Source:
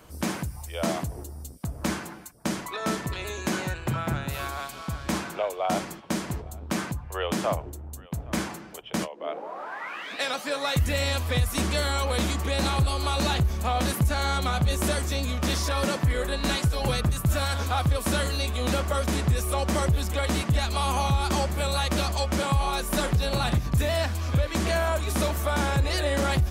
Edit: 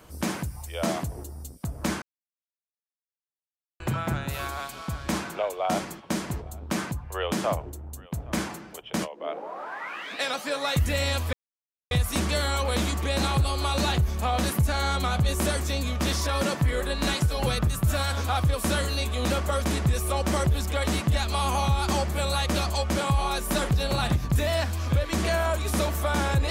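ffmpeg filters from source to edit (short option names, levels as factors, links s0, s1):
-filter_complex "[0:a]asplit=4[s0][s1][s2][s3];[s0]atrim=end=2.02,asetpts=PTS-STARTPTS,afade=t=out:st=2.016:d=0.004:c=hsin[s4];[s1]atrim=start=2.02:end=3.8,asetpts=PTS-STARTPTS,volume=0[s5];[s2]atrim=start=3.8:end=11.33,asetpts=PTS-STARTPTS,afade=t=in:d=0.004:c=hsin,afade=t=out:st=7.526:d=0.004:c=hsin,apad=pad_dur=0.58[s6];[s3]atrim=start=11.33,asetpts=PTS-STARTPTS,afade=t=in:d=0.004:c=hsin[s7];[s4][s5][s6][s7]concat=n=4:v=0:a=1"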